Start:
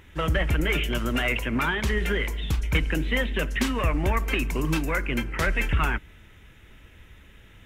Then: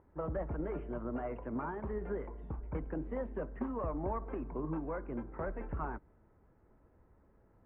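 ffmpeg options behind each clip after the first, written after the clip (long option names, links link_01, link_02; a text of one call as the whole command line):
ffmpeg -i in.wav -af "lowpass=frequency=1000:width=0.5412,lowpass=frequency=1000:width=1.3066,lowshelf=frequency=210:gain=-11.5,volume=-6dB" out.wav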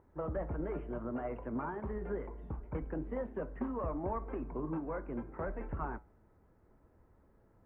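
ffmpeg -i in.wav -af "flanger=delay=8.1:depth=3.3:regen=-81:speed=0.69:shape=sinusoidal,volume=4.5dB" out.wav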